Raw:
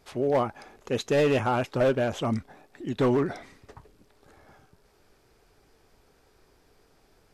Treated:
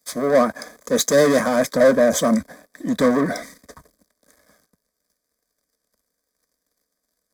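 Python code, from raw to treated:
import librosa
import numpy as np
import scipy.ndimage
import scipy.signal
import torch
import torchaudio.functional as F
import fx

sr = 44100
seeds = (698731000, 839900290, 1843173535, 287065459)

y = fx.high_shelf(x, sr, hz=4100.0, db=7.5)
y = fx.leveller(y, sr, passes=3)
y = fx.fixed_phaser(y, sr, hz=560.0, stages=8)
y = fx.notch_comb(y, sr, f0_hz=1400.0)
y = fx.band_widen(y, sr, depth_pct=40)
y = F.gain(torch.from_numpy(y), 6.0).numpy()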